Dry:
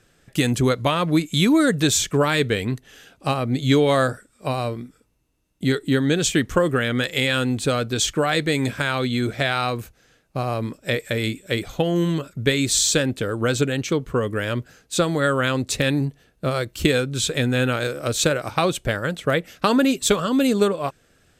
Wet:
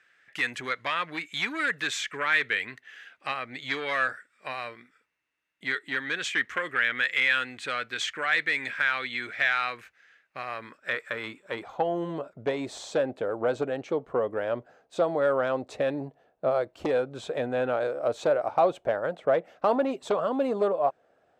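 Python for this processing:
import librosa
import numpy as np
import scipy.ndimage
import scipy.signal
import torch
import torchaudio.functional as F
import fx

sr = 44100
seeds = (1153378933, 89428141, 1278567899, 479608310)

y = fx.fold_sine(x, sr, drive_db=9, ceiling_db=-1.0)
y = fx.filter_sweep_bandpass(y, sr, from_hz=1900.0, to_hz=700.0, start_s=10.44, end_s=12.12, q=2.8)
y = y * librosa.db_to_amplitude(-7.5)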